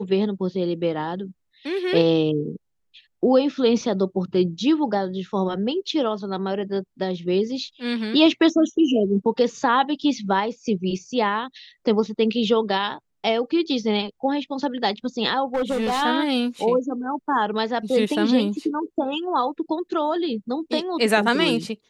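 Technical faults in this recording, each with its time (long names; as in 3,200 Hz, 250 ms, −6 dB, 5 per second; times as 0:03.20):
0:15.54–0:16.03: clipping −19 dBFS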